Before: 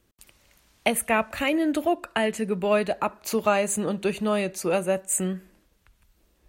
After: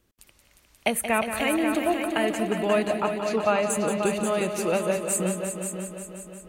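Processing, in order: 2.95–3.7 LPF 4800 Hz 12 dB/oct; multi-head echo 0.178 s, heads all three, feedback 52%, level -10 dB; gain -1.5 dB

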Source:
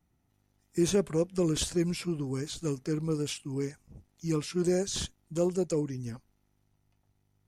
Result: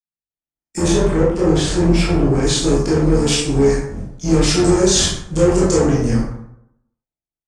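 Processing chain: octaver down 2 oct, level -5 dB; limiter -24.5 dBFS, peak gain reduction 10 dB; sample leveller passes 2; gate -59 dBFS, range -38 dB; high shelf 3700 Hz +3 dB, from 0.88 s -8.5 dB, from 2.42 s +2.5 dB; reverb RT60 0.75 s, pre-delay 12 ms, DRR -7 dB; AGC gain up to 10.5 dB; LPF 9000 Hz 24 dB/oct; bell 64 Hz -8 dB 0.57 oct

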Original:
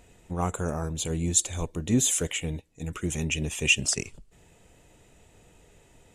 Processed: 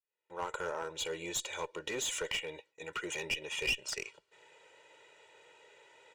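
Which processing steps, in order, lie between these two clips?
opening faded in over 0.66 s; LPF 2800 Hz 12 dB/oct; gate with hold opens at -52 dBFS; HPF 580 Hz 12 dB/oct; high shelf 2200 Hz +8 dB; comb 2.1 ms, depth 78%; compressor 2.5:1, threshold -33 dBFS, peak gain reduction 13.5 dB; one-sided clip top -33 dBFS

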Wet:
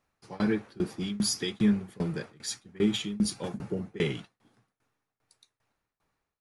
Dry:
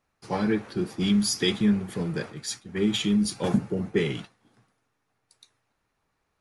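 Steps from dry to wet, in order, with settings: tremolo saw down 2.5 Hz, depth 95%

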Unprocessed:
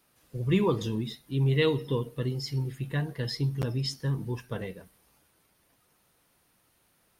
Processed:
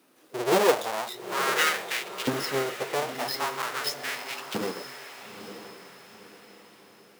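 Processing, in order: half-waves squared off; LFO high-pass saw up 0.44 Hz 260–3000 Hz; diffused feedback echo 0.915 s, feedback 43%, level -10 dB

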